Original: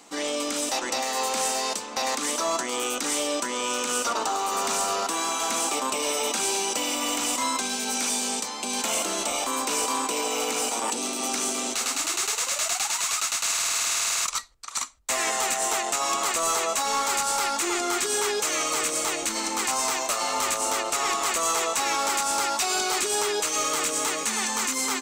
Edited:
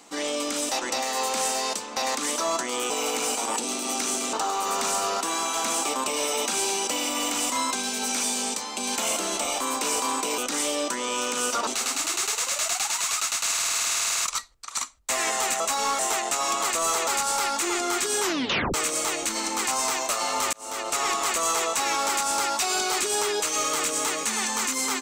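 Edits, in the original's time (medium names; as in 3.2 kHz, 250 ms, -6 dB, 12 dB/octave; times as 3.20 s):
2.90–4.19 s: swap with 10.24–11.67 s
16.68–17.07 s: move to 15.60 s
18.22 s: tape stop 0.52 s
20.53–20.95 s: fade in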